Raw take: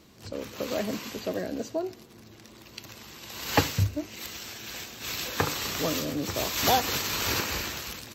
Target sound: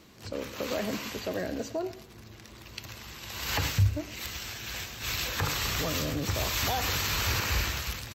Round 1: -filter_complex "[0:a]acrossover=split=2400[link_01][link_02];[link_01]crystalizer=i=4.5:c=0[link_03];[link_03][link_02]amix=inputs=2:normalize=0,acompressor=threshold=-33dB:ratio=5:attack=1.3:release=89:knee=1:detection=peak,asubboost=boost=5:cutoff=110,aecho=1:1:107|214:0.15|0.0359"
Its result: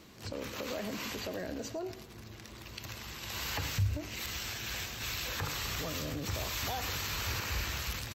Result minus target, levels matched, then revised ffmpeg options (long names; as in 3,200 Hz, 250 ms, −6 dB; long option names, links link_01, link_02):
downward compressor: peak gain reduction +7 dB
-filter_complex "[0:a]acrossover=split=2400[link_01][link_02];[link_01]crystalizer=i=4.5:c=0[link_03];[link_03][link_02]amix=inputs=2:normalize=0,acompressor=threshold=-24.5dB:ratio=5:attack=1.3:release=89:knee=1:detection=peak,asubboost=boost=5:cutoff=110,aecho=1:1:107|214:0.15|0.0359"